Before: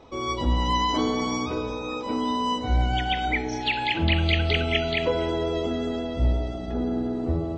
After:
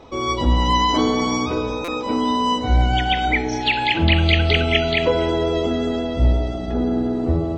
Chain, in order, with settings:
buffer that repeats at 0:01.84, samples 256, times 6
level +6 dB

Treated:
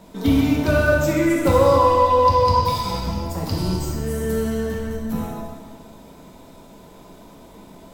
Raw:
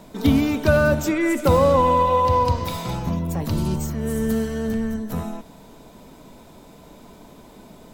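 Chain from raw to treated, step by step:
0:01.66–0:03.78: parametric band 4,900 Hz +13 dB 0.23 octaves
dense smooth reverb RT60 1.6 s, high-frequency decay 0.85×, DRR −2.5 dB
level −3.5 dB

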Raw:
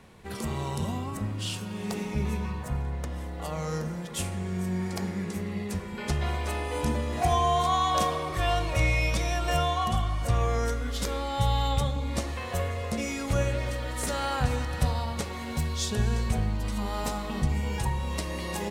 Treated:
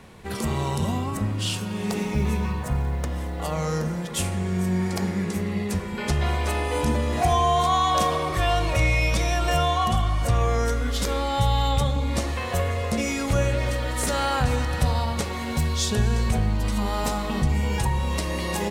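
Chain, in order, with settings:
in parallel at 0 dB: brickwall limiter −21.5 dBFS, peak gain reduction 10 dB
0:02.00–0:03.54: on the sum: log-companded quantiser 8 bits

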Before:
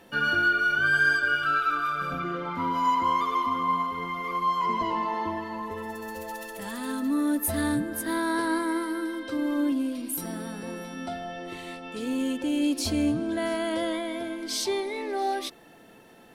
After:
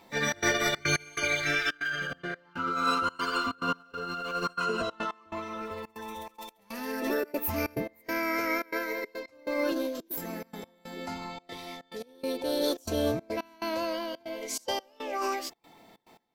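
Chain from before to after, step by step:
gate pattern "xxx.xxx.x..xx" 141 BPM −24 dB
formants moved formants +5 semitones
level −3 dB

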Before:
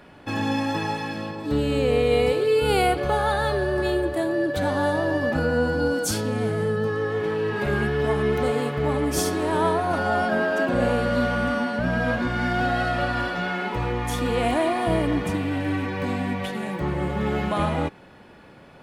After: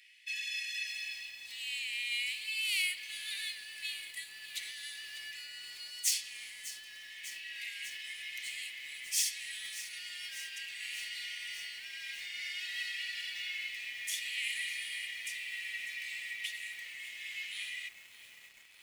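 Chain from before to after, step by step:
stylus tracing distortion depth 0.03 ms
Chebyshev high-pass with heavy ripple 1,900 Hz, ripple 3 dB
feedback echo at a low word length 597 ms, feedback 80%, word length 8 bits, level −13.5 dB

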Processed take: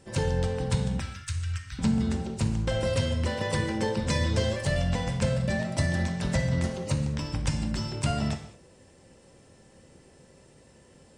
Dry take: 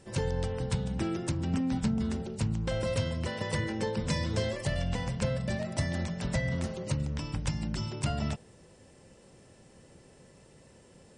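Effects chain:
0:01.00–0:01.79: elliptic band-stop filter 100–1,400 Hz, stop band 40 dB
in parallel at −7 dB: dead-zone distortion −47.5 dBFS
on the sum: reverb whose tail is shaped and stops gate 250 ms falling, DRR 5.5 dB

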